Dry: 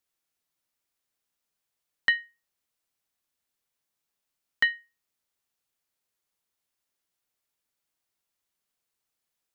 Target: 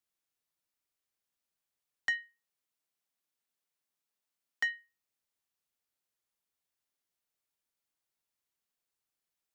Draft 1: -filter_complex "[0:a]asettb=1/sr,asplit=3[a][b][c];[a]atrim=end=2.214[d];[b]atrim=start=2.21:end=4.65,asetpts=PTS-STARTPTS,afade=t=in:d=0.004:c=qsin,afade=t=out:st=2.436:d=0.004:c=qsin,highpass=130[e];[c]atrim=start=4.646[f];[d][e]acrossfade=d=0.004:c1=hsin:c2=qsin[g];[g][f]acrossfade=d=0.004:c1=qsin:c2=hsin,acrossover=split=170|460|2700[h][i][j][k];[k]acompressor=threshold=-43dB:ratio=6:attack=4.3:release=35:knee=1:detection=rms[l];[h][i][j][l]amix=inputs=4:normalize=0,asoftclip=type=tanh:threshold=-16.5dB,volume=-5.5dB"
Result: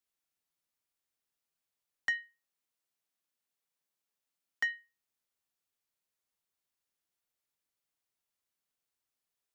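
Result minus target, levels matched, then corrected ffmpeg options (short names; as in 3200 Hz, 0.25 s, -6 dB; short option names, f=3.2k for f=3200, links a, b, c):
compressor: peak gain reduction +6 dB
-filter_complex "[0:a]asettb=1/sr,asplit=3[a][b][c];[a]atrim=end=2.214[d];[b]atrim=start=2.21:end=4.65,asetpts=PTS-STARTPTS,afade=t=in:d=0.004:c=qsin,afade=t=out:st=2.436:d=0.004:c=qsin,highpass=130[e];[c]atrim=start=4.646[f];[d][e]acrossfade=d=0.004:c1=hsin:c2=qsin[g];[g][f]acrossfade=d=0.004:c1=qsin:c2=hsin,acrossover=split=170|460|2700[h][i][j][k];[k]acompressor=threshold=-35.5dB:ratio=6:attack=4.3:release=35:knee=1:detection=rms[l];[h][i][j][l]amix=inputs=4:normalize=0,asoftclip=type=tanh:threshold=-16.5dB,volume=-5.5dB"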